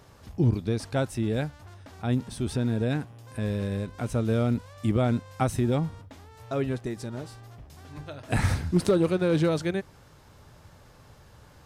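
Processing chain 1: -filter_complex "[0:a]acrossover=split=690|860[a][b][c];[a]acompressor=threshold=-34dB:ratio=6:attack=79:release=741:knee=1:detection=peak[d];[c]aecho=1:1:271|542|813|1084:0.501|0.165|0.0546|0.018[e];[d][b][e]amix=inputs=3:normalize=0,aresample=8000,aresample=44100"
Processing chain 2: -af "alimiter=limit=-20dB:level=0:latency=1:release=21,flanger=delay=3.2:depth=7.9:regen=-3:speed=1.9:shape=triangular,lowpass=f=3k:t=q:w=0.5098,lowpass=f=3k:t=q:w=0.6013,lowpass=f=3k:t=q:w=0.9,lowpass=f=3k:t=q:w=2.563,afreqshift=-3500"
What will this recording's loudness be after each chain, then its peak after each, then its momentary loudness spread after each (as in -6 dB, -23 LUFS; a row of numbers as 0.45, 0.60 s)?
-35.0, -30.0 LUFS; -14.0, -17.5 dBFS; 19, 16 LU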